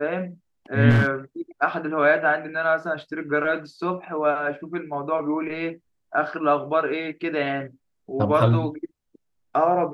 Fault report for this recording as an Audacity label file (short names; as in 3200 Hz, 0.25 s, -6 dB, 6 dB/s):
0.890000	1.070000	clipped -13.5 dBFS